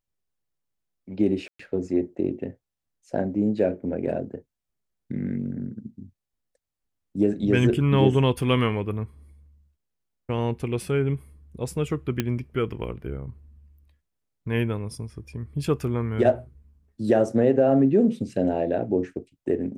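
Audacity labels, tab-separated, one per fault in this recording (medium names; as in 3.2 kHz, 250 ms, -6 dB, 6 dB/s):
1.480000	1.590000	dropout 114 ms
12.200000	12.200000	pop -10 dBFS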